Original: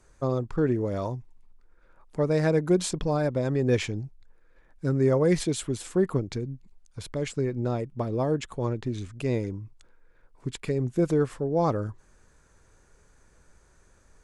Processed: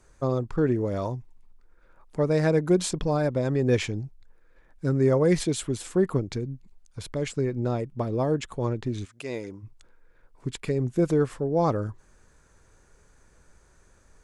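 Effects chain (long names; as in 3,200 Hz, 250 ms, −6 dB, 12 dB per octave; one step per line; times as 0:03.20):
0:09.04–0:09.62: high-pass filter 1,300 Hz → 340 Hz 6 dB per octave
level +1 dB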